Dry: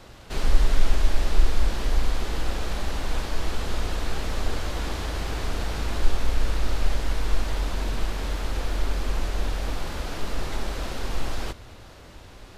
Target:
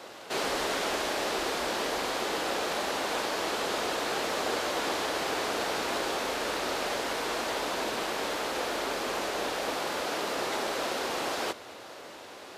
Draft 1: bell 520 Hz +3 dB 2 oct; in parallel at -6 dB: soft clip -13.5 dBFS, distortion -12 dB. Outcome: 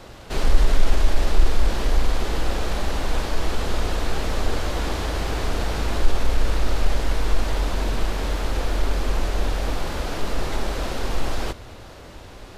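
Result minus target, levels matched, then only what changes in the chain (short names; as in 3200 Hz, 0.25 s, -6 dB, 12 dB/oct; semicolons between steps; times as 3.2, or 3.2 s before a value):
500 Hz band -3.0 dB
add first: HPF 360 Hz 12 dB/oct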